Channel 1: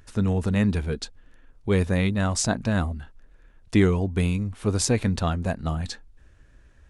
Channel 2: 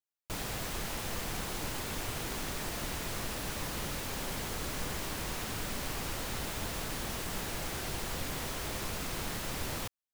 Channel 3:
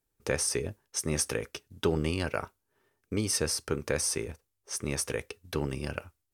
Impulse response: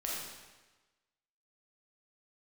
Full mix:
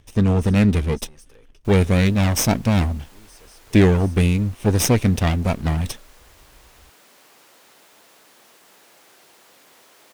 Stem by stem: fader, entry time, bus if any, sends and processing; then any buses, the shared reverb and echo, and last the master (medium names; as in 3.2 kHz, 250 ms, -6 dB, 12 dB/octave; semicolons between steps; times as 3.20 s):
+2.5 dB, 0.00 s, no send, comb filter that takes the minimum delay 0.33 ms; waveshaping leveller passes 1
-13.0 dB, 1.35 s, no send, high-pass 360 Hz 12 dB/octave
-17.0 dB, 0.00 s, no send, saturation -28.5 dBFS, distortion -8 dB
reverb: none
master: none